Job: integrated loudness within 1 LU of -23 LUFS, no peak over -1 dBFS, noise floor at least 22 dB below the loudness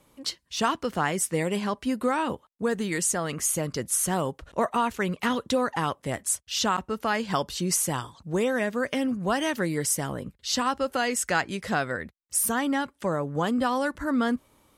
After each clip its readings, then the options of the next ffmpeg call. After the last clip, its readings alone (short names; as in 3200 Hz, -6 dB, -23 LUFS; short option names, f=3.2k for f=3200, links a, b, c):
loudness -27.0 LUFS; peak -11.0 dBFS; loudness target -23.0 LUFS
-> -af "volume=4dB"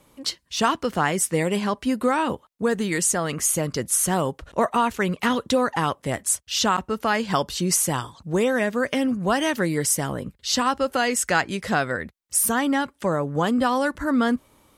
loudness -23.0 LUFS; peak -7.0 dBFS; noise floor -62 dBFS